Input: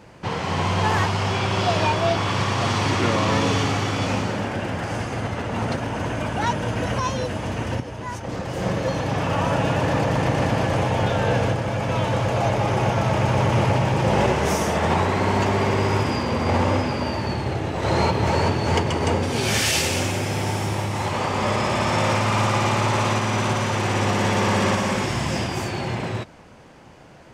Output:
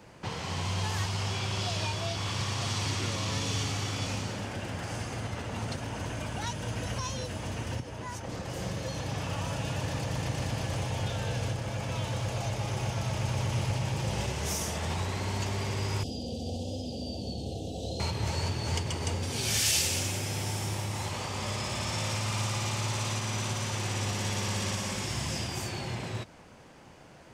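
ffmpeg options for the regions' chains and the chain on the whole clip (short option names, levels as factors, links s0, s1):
-filter_complex "[0:a]asettb=1/sr,asplit=3[s0][s1][s2];[s0]atrim=end=16.034[s3];[s1]atrim=start=16.03:end=18,asetpts=PTS-STARTPTS,afade=t=in:d=0.004:c=qsin,afade=t=out:st=1.966:d=0.004:c=qsin,aecho=1:1:4.1:0.47,atrim=end_sample=86877,acrossover=split=1600|5600[s4][s5][s6];[s4]acompressor=threshold=0.0891:ratio=4[s7];[s5]acompressor=threshold=0.0158:ratio=4[s8];[s6]acompressor=threshold=0.002:ratio=4[s9];[s7][s8][s9]amix=inputs=3:normalize=0,asuperstop=centerf=1500:order=12:qfactor=0.66[s10];[s2]atrim=start=17.996[s11];[s3][s10]acrossfade=d=0.004:c1=hsin:c2=qsin[s12];[s12][s11]acrossfade=d=0.004:c1=qsin:c2=hsin,highshelf=f=4100:g=5.5,acrossover=split=130|3000[s13][s14][s15];[s14]acompressor=threshold=0.0282:ratio=4[s16];[s13][s16][s15]amix=inputs=3:normalize=0,volume=0.501"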